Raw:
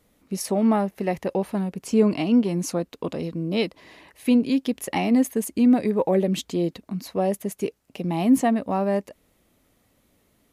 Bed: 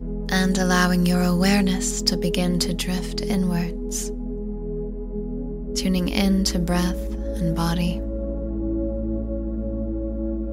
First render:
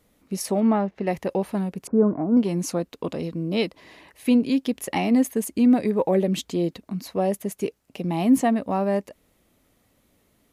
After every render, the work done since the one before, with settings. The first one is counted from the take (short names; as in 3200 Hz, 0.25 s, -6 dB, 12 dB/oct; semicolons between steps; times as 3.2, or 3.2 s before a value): 0.6–1.07 air absorption 160 m; 1.87–2.37 elliptic low-pass 1500 Hz, stop band 50 dB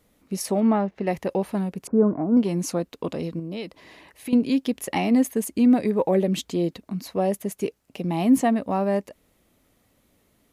3.39–4.33 compressor 4:1, threshold -30 dBFS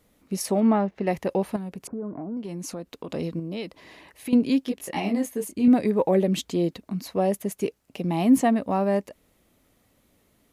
1.56–3.1 compressor 4:1, threshold -32 dBFS; 4.65–5.68 detuned doubles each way 20 cents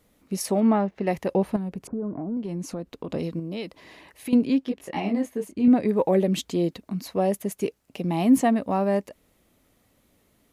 1.31–3.18 tilt -1.5 dB/oct; 4.45–5.89 LPF 2800 Hz 6 dB/oct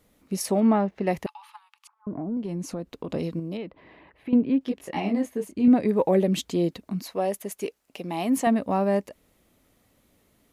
1.26–2.07 rippled Chebyshev high-pass 830 Hz, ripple 9 dB; 3.57–4.61 air absorption 490 m; 7.02–8.47 bell 99 Hz -13 dB 2.7 oct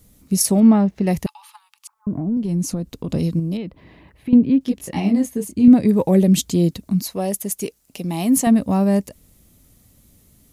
tone controls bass +15 dB, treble +14 dB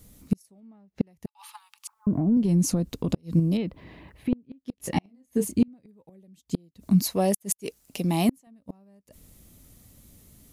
flipped gate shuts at -11 dBFS, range -39 dB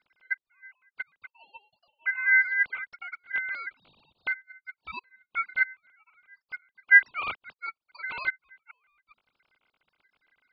sine-wave speech; ring modulator 1800 Hz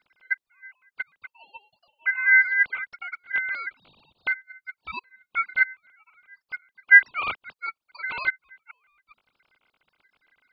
gain +4 dB; limiter -2 dBFS, peak gain reduction 1 dB